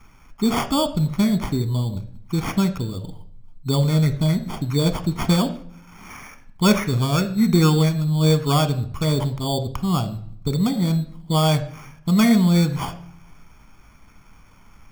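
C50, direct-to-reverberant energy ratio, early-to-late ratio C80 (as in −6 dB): 14.0 dB, 9.5 dB, 17.0 dB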